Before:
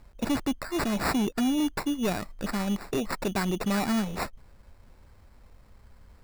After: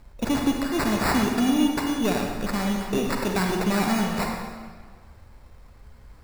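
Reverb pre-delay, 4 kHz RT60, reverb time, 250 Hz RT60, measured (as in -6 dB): 35 ms, 1.3 s, 1.6 s, 1.6 s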